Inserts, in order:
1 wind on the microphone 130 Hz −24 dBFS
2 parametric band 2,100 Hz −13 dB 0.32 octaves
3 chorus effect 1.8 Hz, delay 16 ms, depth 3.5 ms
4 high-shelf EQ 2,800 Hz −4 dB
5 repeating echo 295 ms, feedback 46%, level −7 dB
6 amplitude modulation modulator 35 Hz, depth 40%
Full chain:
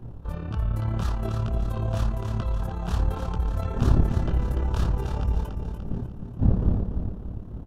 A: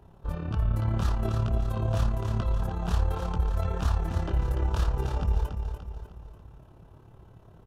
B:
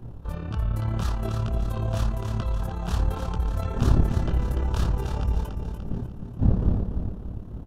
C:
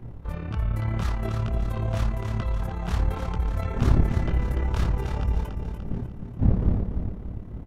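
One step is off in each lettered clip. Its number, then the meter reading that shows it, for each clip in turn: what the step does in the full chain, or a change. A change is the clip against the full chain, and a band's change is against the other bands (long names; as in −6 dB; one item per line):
1, 250 Hz band −5.5 dB
4, 4 kHz band +2.5 dB
2, 2 kHz band +4.0 dB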